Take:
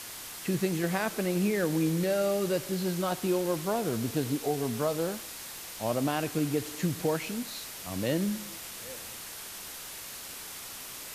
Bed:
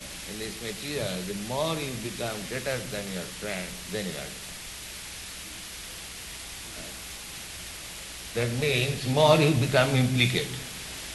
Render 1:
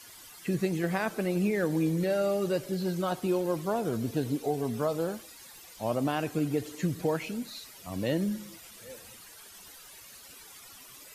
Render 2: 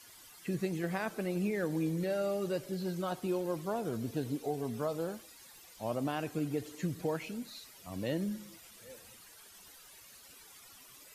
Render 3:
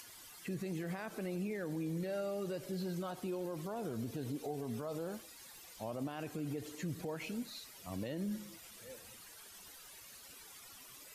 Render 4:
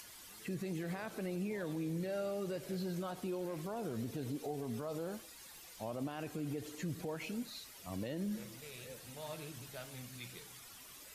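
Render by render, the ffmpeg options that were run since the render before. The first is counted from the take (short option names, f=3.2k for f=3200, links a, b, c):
-af "afftdn=nr=13:nf=-43"
-af "volume=-5.5dB"
-af "alimiter=level_in=7.5dB:limit=-24dB:level=0:latency=1:release=64,volume=-7.5dB,acompressor=mode=upward:threshold=-51dB:ratio=2.5"
-filter_complex "[1:a]volume=-27dB[a];[0:a][a]amix=inputs=2:normalize=0"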